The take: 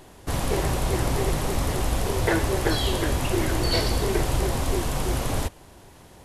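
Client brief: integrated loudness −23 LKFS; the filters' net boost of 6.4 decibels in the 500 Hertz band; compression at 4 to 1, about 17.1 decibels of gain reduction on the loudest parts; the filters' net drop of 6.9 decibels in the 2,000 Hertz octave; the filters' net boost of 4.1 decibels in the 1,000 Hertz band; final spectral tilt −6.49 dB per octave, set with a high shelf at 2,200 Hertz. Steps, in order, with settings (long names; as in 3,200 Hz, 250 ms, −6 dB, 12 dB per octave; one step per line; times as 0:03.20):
parametric band 500 Hz +8 dB
parametric band 1,000 Hz +5 dB
parametric band 2,000 Hz −8.5 dB
high-shelf EQ 2,200 Hz −6 dB
downward compressor 4 to 1, threshold −36 dBFS
level +15 dB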